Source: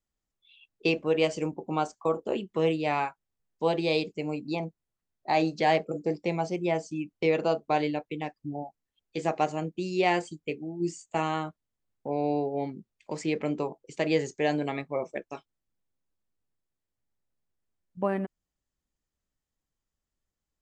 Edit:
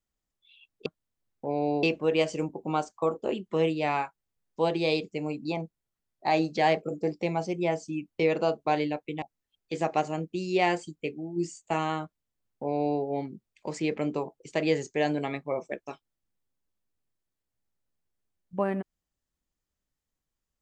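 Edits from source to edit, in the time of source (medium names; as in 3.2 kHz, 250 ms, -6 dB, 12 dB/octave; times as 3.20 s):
8.25–8.66 s: delete
11.48–12.45 s: copy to 0.86 s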